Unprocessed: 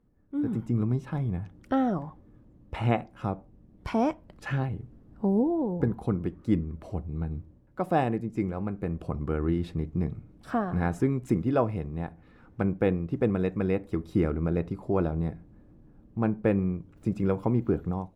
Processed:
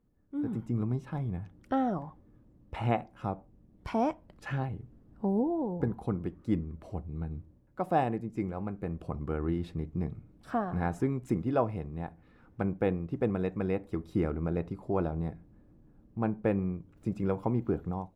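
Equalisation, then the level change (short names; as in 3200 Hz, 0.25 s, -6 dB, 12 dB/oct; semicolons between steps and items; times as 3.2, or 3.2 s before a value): dynamic EQ 810 Hz, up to +4 dB, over -42 dBFS, Q 1.7; -4.5 dB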